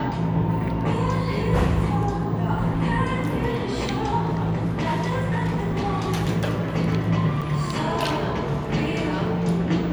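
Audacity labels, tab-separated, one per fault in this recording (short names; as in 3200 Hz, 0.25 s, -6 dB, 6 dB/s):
4.250000	6.060000	clipped -19.5 dBFS
7.410000	7.420000	gap 6.7 ms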